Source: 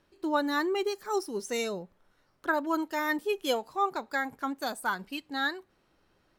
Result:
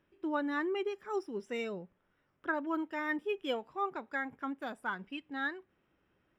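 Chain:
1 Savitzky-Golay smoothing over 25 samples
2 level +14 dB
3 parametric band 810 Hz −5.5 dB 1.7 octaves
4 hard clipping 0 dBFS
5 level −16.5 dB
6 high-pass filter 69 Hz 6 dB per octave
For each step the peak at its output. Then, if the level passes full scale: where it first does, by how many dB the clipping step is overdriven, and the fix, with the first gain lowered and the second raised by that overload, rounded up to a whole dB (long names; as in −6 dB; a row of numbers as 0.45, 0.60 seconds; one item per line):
−15.0, −1.0, −4.0, −4.0, −20.5, −21.0 dBFS
no step passes full scale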